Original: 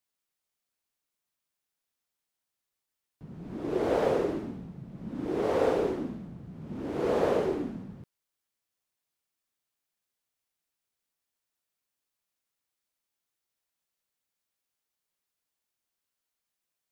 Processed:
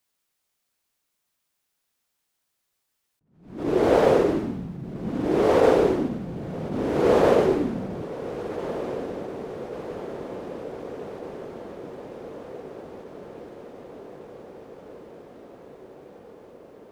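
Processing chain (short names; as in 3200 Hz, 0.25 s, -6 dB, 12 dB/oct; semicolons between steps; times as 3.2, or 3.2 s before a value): diffused feedback echo 1.513 s, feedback 70%, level -12 dB; attack slew limiter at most 110 dB/s; gain +8.5 dB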